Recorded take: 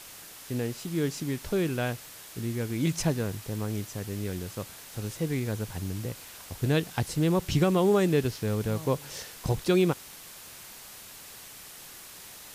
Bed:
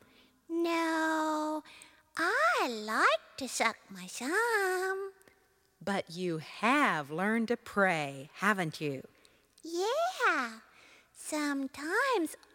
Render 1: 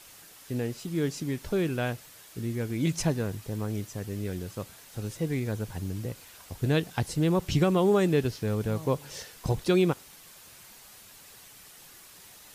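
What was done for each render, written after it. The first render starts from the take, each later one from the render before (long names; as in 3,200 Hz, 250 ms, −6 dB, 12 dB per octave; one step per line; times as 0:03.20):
broadband denoise 6 dB, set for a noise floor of −47 dBFS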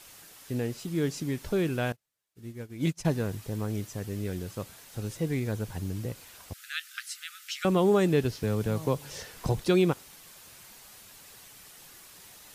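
0:01.92–0:03.05: expander for the loud parts 2.5 to 1, over −47 dBFS
0:06.53–0:07.65: linear-phase brick-wall high-pass 1,200 Hz
0:08.43–0:09.61: multiband upward and downward compressor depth 40%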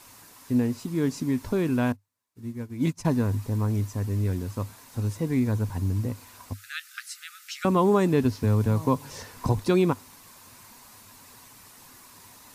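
thirty-one-band graphic EQ 100 Hz +11 dB, 250 Hz +12 dB, 1,000 Hz +11 dB, 3,150 Hz −5 dB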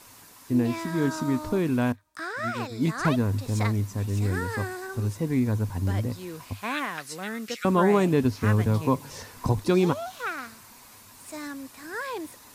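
mix in bed −4 dB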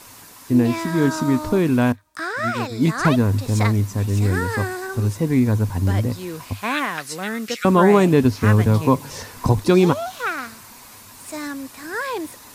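level +7 dB
brickwall limiter −3 dBFS, peak gain reduction 1 dB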